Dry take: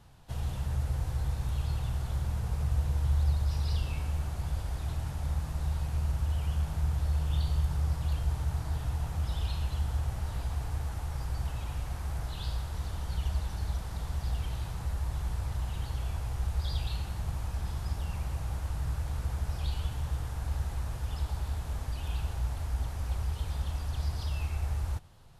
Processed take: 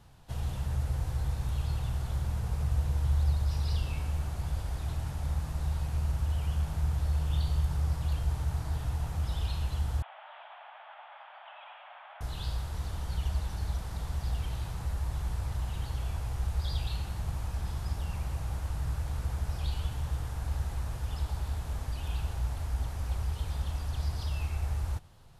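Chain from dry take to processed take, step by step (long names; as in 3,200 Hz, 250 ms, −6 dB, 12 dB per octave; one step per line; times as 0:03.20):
0:10.02–0:12.21: Chebyshev band-pass filter 600–3,400 Hz, order 5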